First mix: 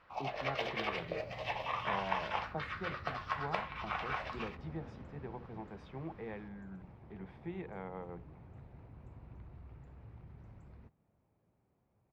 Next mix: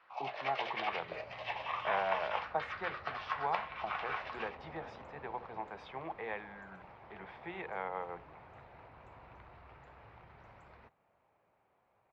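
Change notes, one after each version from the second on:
speech +10.0 dB; second sound +11.5 dB; master: add three-band isolator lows -20 dB, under 550 Hz, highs -13 dB, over 4900 Hz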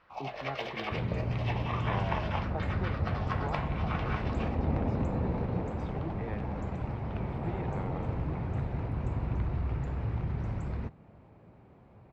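speech -7.5 dB; second sound +9.0 dB; master: remove three-band isolator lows -20 dB, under 550 Hz, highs -13 dB, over 4900 Hz

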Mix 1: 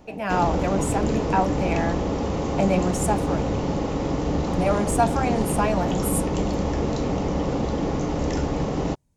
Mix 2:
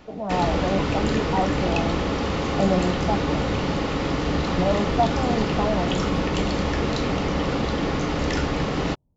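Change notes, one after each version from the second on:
speech: add inverse Chebyshev low-pass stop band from 1700 Hz, stop band 40 dB; master: add band shelf 2400 Hz +9 dB 2.3 oct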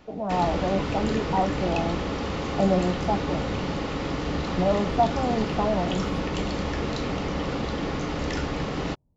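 background -4.5 dB

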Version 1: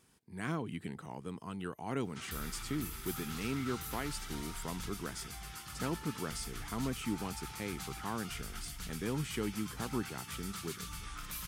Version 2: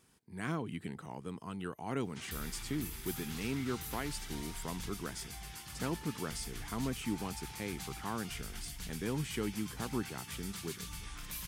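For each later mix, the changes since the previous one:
background: add bell 1300 Hz -11.5 dB 0.24 oct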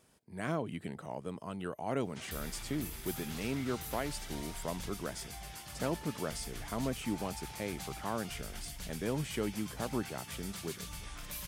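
master: add bell 600 Hz +12 dB 0.47 oct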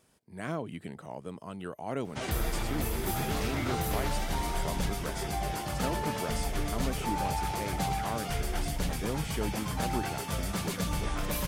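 background: remove passive tone stack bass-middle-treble 5-5-5

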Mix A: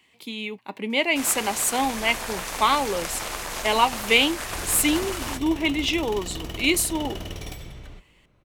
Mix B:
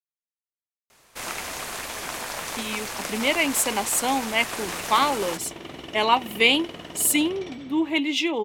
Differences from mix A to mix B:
speech: entry +2.30 s; second sound: add BPF 180–3900 Hz

